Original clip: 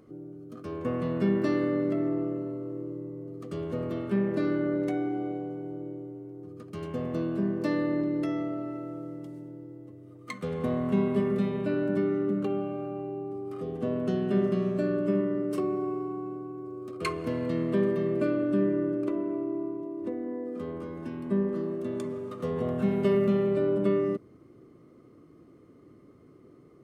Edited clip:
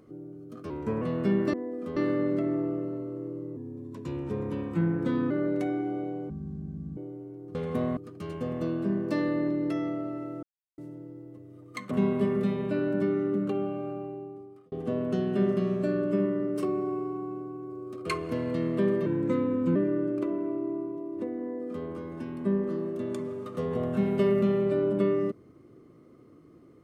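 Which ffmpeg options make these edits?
ffmpeg -i in.wav -filter_complex "[0:a]asplit=17[link_01][link_02][link_03][link_04][link_05][link_06][link_07][link_08][link_09][link_10][link_11][link_12][link_13][link_14][link_15][link_16][link_17];[link_01]atrim=end=0.704[link_18];[link_02]atrim=start=0.7:end=0.98,asetpts=PTS-STARTPTS,asetrate=39249,aresample=44100,atrim=end_sample=13874,asetpts=PTS-STARTPTS[link_19];[link_03]atrim=start=0.976:end=1.502[link_20];[link_04]atrim=start=20.268:end=20.702[link_21];[link_05]atrim=start=1.498:end=3.104[link_22];[link_06]atrim=start=3.1:end=4.58,asetpts=PTS-STARTPTS,asetrate=37485,aresample=44100[link_23];[link_07]atrim=start=4.576:end=5.574[link_24];[link_08]atrim=start=5.57:end=5.92,asetpts=PTS-STARTPTS,asetrate=22932,aresample=44100[link_25];[link_09]atrim=start=5.916:end=6.502[link_26];[link_10]atrim=start=10.438:end=10.862[link_27];[link_11]atrim=start=6.498:end=8.96,asetpts=PTS-STARTPTS,afade=type=out:start_time=2.458:duration=0.004:curve=hsin[link_28];[link_12]atrim=start=8.96:end=9.31,asetpts=PTS-STARTPTS,volume=0[link_29];[link_13]atrim=start=9.31:end=10.442,asetpts=PTS-STARTPTS,afade=type=in:duration=0.004:curve=hsin[link_30];[link_14]atrim=start=10.858:end=13.67,asetpts=PTS-STARTPTS,afade=type=out:start_time=2.002:duration=0.81[link_31];[link_15]atrim=start=13.67:end=18.014,asetpts=PTS-STARTPTS,afade=type=in:duration=0.004:curve=hsin[link_32];[link_16]atrim=start=18.01:end=18.61,asetpts=PTS-STARTPTS,asetrate=37926,aresample=44100,atrim=end_sample=30767,asetpts=PTS-STARTPTS[link_33];[link_17]atrim=start=18.606[link_34];[link_18][link_19]acrossfade=duration=0.004:curve1=hsin:curve2=hsin[link_35];[link_35][link_20]acrossfade=duration=0.004:curve1=hsin:curve2=hsin[link_36];[link_36][link_21]acrossfade=duration=0.004:curve1=hsin:curve2=hsin[link_37];[link_37][link_22]acrossfade=duration=0.004:curve1=hsin:curve2=hsin[link_38];[link_38][link_23]acrossfade=duration=0.004:curve1=hsin:curve2=hsin[link_39];[link_39][link_24]acrossfade=duration=0.004:curve1=hsin:curve2=hsin[link_40];[link_40][link_25]acrossfade=duration=0.004:curve1=hsin:curve2=hsin[link_41];[link_41][link_26]acrossfade=duration=0.004:curve1=hsin:curve2=hsin[link_42];[link_42][link_27]acrossfade=duration=0.004:curve1=hsin:curve2=hsin[link_43];[link_28][link_29][link_30]concat=n=3:v=0:a=1[link_44];[link_43][link_44]acrossfade=duration=0.004:curve1=hsin:curve2=hsin[link_45];[link_31][link_32]concat=n=2:v=0:a=1[link_46];[link_45][link_46]acrossfade=duration=0.004:curve1=hsin:curve2=hsin[link_47];[link_47][link_33]acrossfade=duration=0.004:curve1=hsin:curve2=hsin[link_48];[link_48][link_34]acrossfade=duration=0.004:curve1=hsin:curve2=hsin" out.wav

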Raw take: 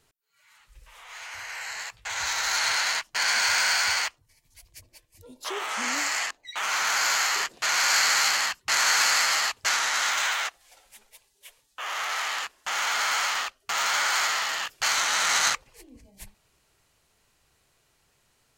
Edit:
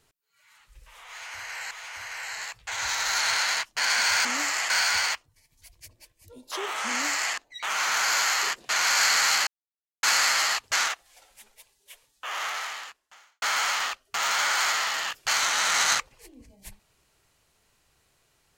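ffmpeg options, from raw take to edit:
ffmpeg -i in.wav -filter_complex "[0:a]asplit=8[link_01][link_02][link_03][link_04][link_05][link_06][link_07][link_08];[link_01]atrim=end=1.712[link_09];[link_02]atrim=start=1.088:end=3.632[link_10];[link_03]atrim=start=5.828:end=6.282[link_11];[link_04]atrim=start=3.628:end=8.4,asetpts=PTS-STARTPTS,afade=type=out:start_time=4.768:duration=0.004:curve=hsin[link_12];[link_05]atrim=start=8.4:end=8.96,asetpts=PTS-STARTPTS,volume=0[link_13];[link_06]atrim=start=8.96:end=9.812,asetpts=PTS-STARTPTS,afade=type=in:duration=0.004:curve=hsin[link_14];[link_07]atrim=start=10.428:end=12.97,asetpts=PTS-STARTPTS,afade=type=out:start_time=1.552:duration=0.99:curve=qua[link_15];[link_08]atrim=start=12.97,asetpts=PTS-STARTPTS,afade=type=in:duration=0.004:curve=hsin[link_16];[link_09][link_10]acrossfade=duration=0.004:curve1=hsin:curve2=hsin[link_17];[link_17][link_11]acrossfade=duration=0.004:curve1=hsin:curve2=hsin[link_18];[link_12][link_13][link_14]concat=n=3:v=0:a=1[link_19];[link_18][link_19]acrossfade=duration=0.004:curve1=hsin:curve2=hsin[link_20];[link_15][link_16]concat=n=2:v=0:a=1[link_21];[link_20][link_21]acrossfade=duration=0.004:curve1=hsin:curve2=hsin" out.wav

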